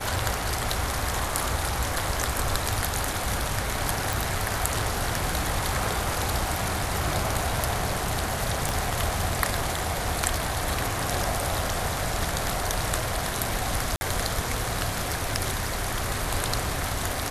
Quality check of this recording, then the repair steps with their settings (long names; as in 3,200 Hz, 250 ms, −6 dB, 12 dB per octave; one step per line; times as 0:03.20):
0:04.13: click
0:08.69: click
0:13.96–0:14.01: drop-out 50 ms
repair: click removal
repair the gap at 0:13.96, 50 ms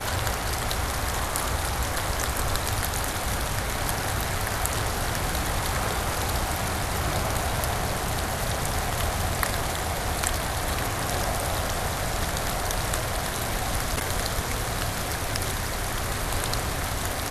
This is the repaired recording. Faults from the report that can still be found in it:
0:08.69: click